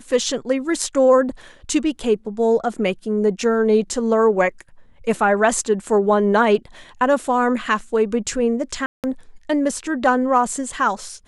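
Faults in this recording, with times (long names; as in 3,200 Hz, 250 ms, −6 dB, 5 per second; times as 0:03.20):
0:08.86–0:09.04: drop-out 178 ms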